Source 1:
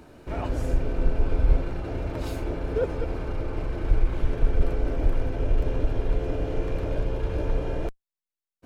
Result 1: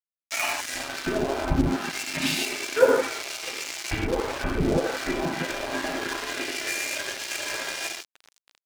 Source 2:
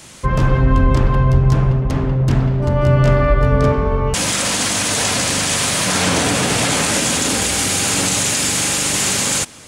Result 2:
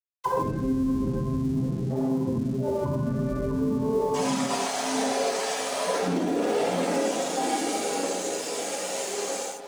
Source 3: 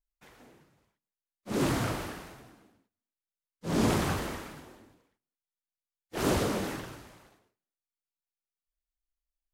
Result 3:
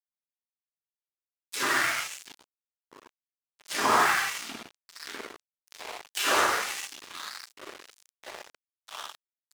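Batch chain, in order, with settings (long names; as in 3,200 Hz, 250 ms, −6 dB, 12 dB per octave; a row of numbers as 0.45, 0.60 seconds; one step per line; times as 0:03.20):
spectral dynamics exaggerated over time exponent 2
envelope filter 210–3,400 Hz, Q 2.7, down, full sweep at −16.5 dBFS
on a send: echo through a band-pass that steps 651 ms, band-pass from 210 Hz, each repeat 0.7 octaves, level −4 dB
on the sum: reverb whose tail is shaped and stops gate 180 ms flat, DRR −4.5 dB
brickwall limiter −20 dBFS
dead-zone distortion −54.5 dBFS
bass and treble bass −6 dB, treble +12 dB
one half of a high-frequency compander encoder only
loudness normalisation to −27 LKFS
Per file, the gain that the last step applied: +19.5, +4.5, +15.5 decibels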